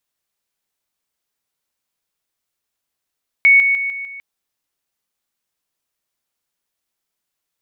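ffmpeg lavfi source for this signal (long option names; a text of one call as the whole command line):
ffmpeg -f lavfi -i "aevalsrc='pow(10,(-6.5-6*floor(t/0.15))/20)*sin(2*PI*2220*t)':duration=0.75:sample_rate=44100" out.wav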